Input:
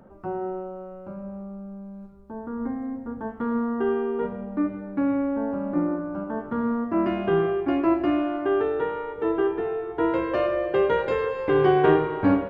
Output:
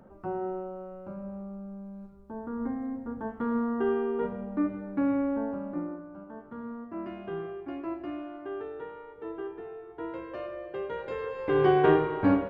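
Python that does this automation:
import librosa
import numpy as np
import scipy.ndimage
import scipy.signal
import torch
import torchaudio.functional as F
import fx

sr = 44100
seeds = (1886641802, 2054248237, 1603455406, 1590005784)

y = fx.gain(x, sr, db=fx.line((5.34, -3.0), (6.09, -14.0), (10.88, -14.0), (11.65, -3.0)))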